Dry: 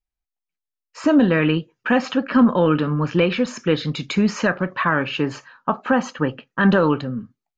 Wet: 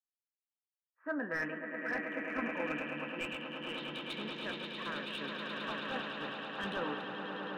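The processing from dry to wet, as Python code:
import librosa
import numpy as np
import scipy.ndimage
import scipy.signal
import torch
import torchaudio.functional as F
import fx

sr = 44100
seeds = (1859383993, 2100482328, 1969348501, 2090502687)

p1 = fx.wiener(x, sr, points=9)
p2 = fx.high_shelf(p1, sr, hz=3700.0, db=-6.5)
p3 = p2 + fx.echo_swell(p2, sr, ms=107, loudest=8, wet_db=-7.0, dry=0)
p4 = fx.filter_sweep_bandpass(p3, sr, from_hz=1700.0, to_hz=3400.0, start_s=1.26, end_s=4.2, q=5.8)
p5 = fx.rider(p4, sr, range_db=3, speed_s=0.5)
p6 = np.clip(p5, -10.0 ** (-30.5 / 20.0), 10.0 ** (-30.5 / 20.0))
p7 = fx.tilt_shelf(p6, sr, db=8.5, hz=1300.0)
p8 = fx.doubler(p7, sr, ms=14.0, db=-12.5)
y = fx.band_widen(p8, sr, depth_pct=100)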